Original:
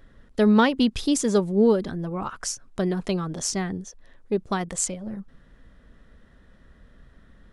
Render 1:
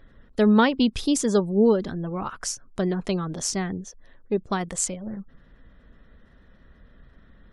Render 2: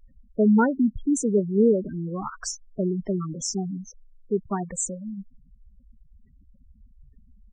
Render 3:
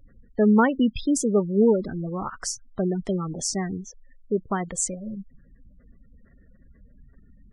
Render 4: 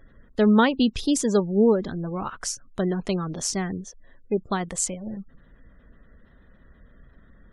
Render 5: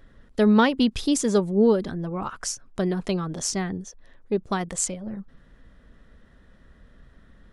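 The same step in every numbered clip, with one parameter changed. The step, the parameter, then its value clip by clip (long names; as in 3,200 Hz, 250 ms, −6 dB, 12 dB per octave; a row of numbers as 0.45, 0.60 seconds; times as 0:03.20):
gate on every frequency bin, under each frame's peak: −45, −10, −20, −35, −60 decibels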